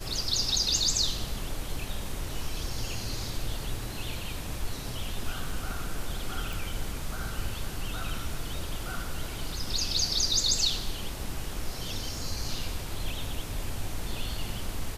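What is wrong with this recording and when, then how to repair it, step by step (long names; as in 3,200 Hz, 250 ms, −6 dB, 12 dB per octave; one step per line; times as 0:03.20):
0:06.53: click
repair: click removal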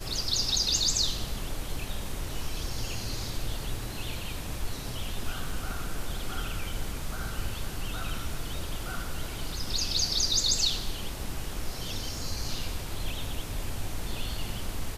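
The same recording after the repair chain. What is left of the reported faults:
none of them is left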